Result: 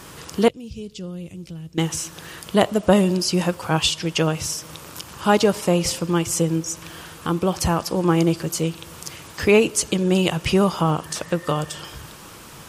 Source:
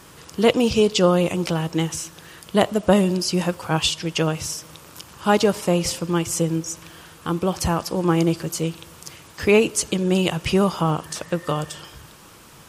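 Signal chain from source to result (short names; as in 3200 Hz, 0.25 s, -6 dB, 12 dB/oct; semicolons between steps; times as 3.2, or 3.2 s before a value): 0.48–1.78 passive tone stack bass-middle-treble 10-0-1; in parallel at -2 dB: compressor, threshold -35 dBFS, peak gain reduction 22 dB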